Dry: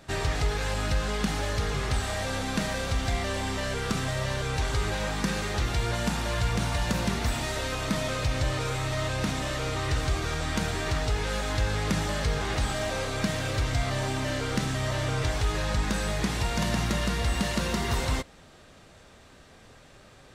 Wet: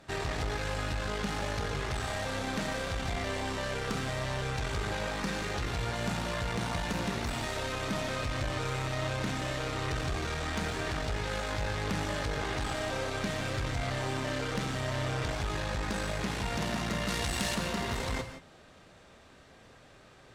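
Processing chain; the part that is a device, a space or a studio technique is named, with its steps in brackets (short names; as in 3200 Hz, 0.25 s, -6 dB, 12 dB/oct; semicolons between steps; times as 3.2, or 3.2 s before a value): tube preamp driven hard (tube stage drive 25 dB, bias 0.55; low shelf 130 Hz -5 dB; high shelf 5600 Hz -6 dB); 17.08–17.55 high shelf 3700 Hz +10.5 dB; non-linear reverb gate 0.19 s rising, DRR 8 dB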